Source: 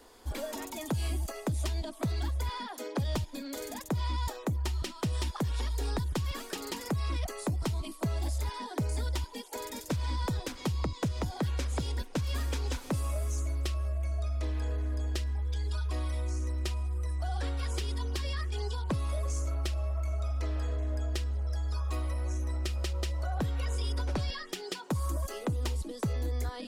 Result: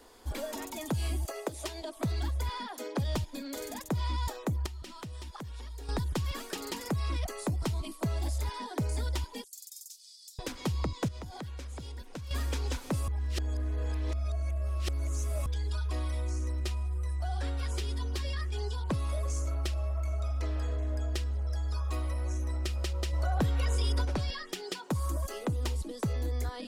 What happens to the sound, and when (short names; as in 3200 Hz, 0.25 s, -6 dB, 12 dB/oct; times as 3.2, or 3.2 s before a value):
1.25–1.97 resonant low shelf 260 Hz -13.5 dB, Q 1.5
4.66–5.89 compressor, threshold -40 dBFS
9.44–10.39 inverse Chebyshev high-pass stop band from 900 Hz, stop band 80 dB
11.08–12.31 compressor 4:1, threshold -40 dBFS
13.08–15.46 reverse
16.6–18.83 notch comb 160 Hz
23.13–24.05 gain +3.5 dB